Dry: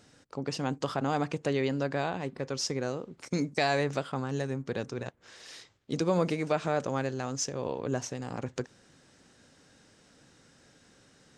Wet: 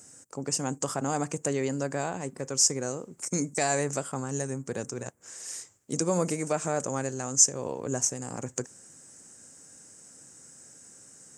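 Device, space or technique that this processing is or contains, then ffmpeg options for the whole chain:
budget condenser microphone: -af "highpass=82,highshelf=f=5.4k:t=q:w=3:g=13"

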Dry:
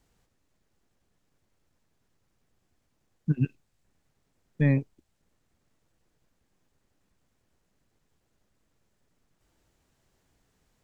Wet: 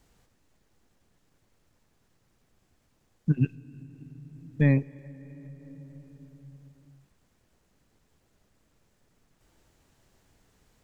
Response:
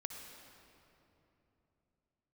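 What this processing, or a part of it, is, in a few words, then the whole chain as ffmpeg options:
compressed reverb return: -filter_complex "[0:a]asplit=2[a][b];[1:a]atrim=start_sample=2205[c];[b][c]afir=irnorm=-1:irlink=0,acompressor=threshold=-43dB:ratio=10,volume=0dB[d];[a][d]amix=inputs=2:normalize=0,volume=1dB"

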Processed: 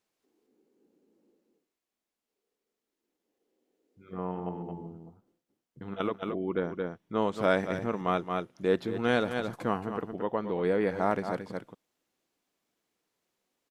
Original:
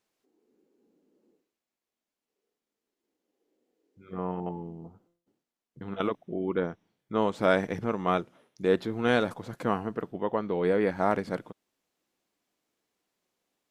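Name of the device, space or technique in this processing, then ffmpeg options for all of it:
ducked delay: -filter_complex "[0:a]asplit=3[a][b][c];[b]adelay=223,volume=-3dB[d];[c]apad=whole_len=614115[e];[d][e]sidechaincompress=threshold=-37dB:ratio=8:attack=16:release=146[f];[a][f]amix=inputs=2:normalize=0,volume=-2dB"

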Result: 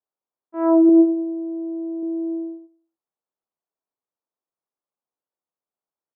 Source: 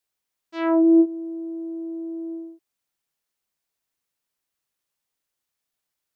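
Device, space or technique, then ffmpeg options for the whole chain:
filter by subtraction: -filter_complex "[0:a]lowpass=f=1.2k:w=0.5412,lowpass=f=1.2k:w=1.3066,aecho=1:1:97|194|291|388:0.237|0.0949|0.0379|0.0152,agate=range=-7dB:threshold=-46dB:ratio=16:detection=peak,asettb=1/sr,asplit=3[a][b][c];[a]atrim=end=0.894[d];[b]atrim=start=0.89:end=2.03,asetpts=PTS-STARTPTS,afade=t=in:d=0.004:c=qsin,afade=t=out:st=1.136:d=0.004:c=qsin,equalizer=f=180:t=o:w=1.3:g=-7.5[e];[c]atrim=start=2.026[f];[d][e]acrossfade=d=0.004:c1=hsin:c2=qsin[g];[g][f]acrossfade=d=0.004:c1=qsin:c2=hsin,asplit=2[h][i];[i]lowpass=440,volume=-1[j];[h][j]amix=inputs=2:normalize=0,volume=3dB"

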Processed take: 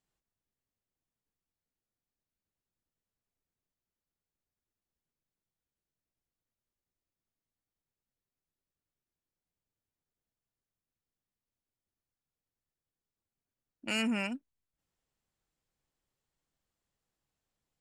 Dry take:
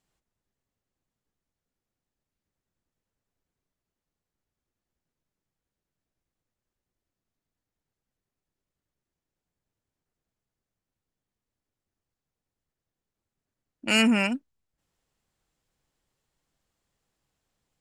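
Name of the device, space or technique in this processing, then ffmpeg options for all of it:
clipper into limiter: -af "asoftclip=type=hard:threshold=-11.5dB,alimiter=limit=-14.5dB:level=0:latency=1:release=316,volume=-8dB"

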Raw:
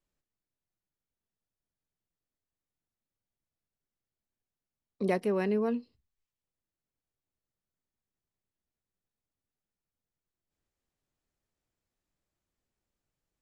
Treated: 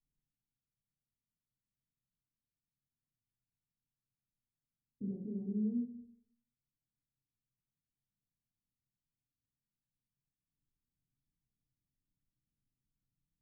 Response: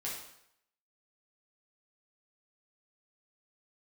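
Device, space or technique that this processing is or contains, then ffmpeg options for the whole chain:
club heard from the street: -filter_complex "[0:a]alimiter=level_in=1.5dB:limit=-24dB:level=0:latency=1:release=111,volume=-1.5dB,lowpass=f=250:w=0.5412,lowpass=f=250:w=1.3066[a];[1:a]atrim=start_sample=2205[b];[a][b]afir=irnorm=-1:irlink=0,volume=1dB"

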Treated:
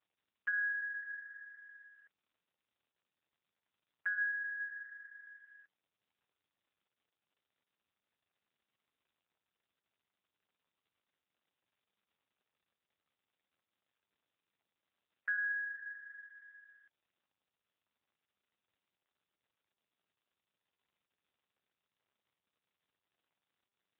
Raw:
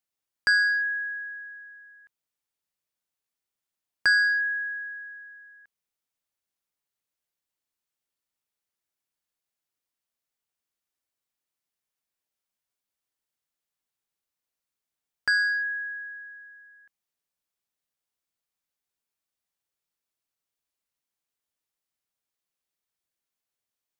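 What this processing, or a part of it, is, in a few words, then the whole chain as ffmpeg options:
voicemail: -af "highpass=350,lowpass=3k,acompressor=threshold=-26dB:ratio=8,volume=-5dB" -ar 8000 -c:a libopencore_amrnb -b:a 7400

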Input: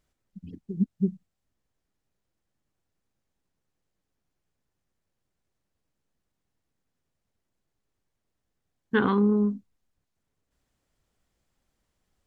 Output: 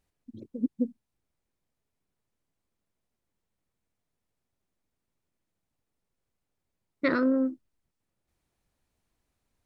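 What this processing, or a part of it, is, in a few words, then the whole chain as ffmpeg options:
nightcore: -af "asetrate=56007,aresample=44100,volume=-2.5dB"

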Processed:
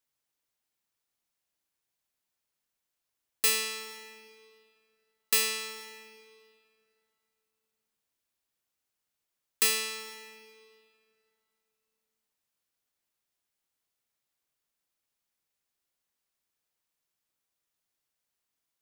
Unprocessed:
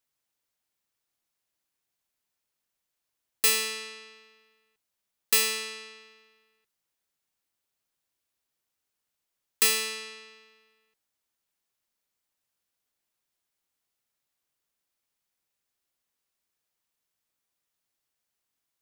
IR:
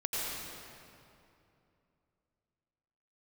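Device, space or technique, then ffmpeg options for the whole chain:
ducked reverb: -filter_complex "[0:a]asplit=3[a][b][c];[1:a]atrim=start_sample=2205[d];[b][d]afir=irnorm=-1:irlink=0[e];[c]apad=whole_len=829753[f];[e][f]sidechaincompress=threshold=-35dB:ratio=8:attack=16:release=240,volume=-16.5dB[g];[a][g]amix=inputs=2:normalize=0,volume=-3dB"

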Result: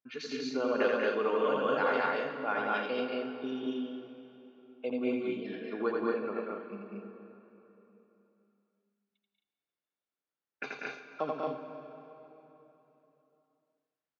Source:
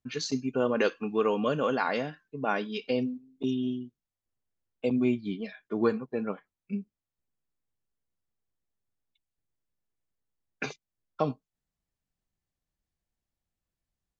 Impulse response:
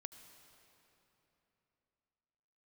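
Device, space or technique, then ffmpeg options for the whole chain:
station announcement: -filter_complex "[0:a]highpass=310,lowpass=3.8k,equalizer=f=1.4k:t=o:w=0.26:g=4,aecho=1:1:84.55|192.4|227.4|265.3:0.708|0.631|0.891|0.447[a];[1:a]atrim=start_sample=2205[b];[a][b]afir=irnorm=-1:irlink=0"

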